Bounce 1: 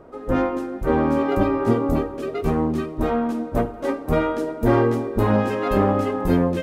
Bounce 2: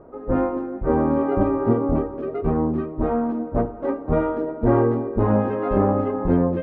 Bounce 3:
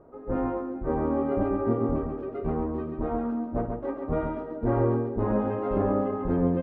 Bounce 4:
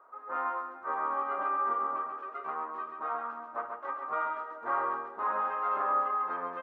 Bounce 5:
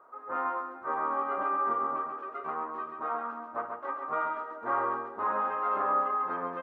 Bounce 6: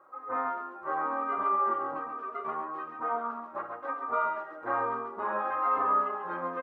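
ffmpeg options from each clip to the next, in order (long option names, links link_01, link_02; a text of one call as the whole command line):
ffmpeg -i in.wav -af "lowpass=1200" out.wav
ffmpeg -i in.wav -af "aecho=1:1:52.48|137:0.282|0.562,volume=-7.5dB" out.wav
ffmpeg -i in.wav -af "highpass=frequency=1200:width_type=q:width=3.5" out.wav
ffmpeg -i in.wav -af "lowshelf=frequency=340:gain=11" out.wav
ffmpeg -i in.wav -filter_complex "[0:a]asplit=2[link_01][link_02];[link_02]adelay=3.2,afreqshift=-1.1[link_03];[link_01][link_03]amix=inputs=2:normalize=1,volume=3.5dB" out.wav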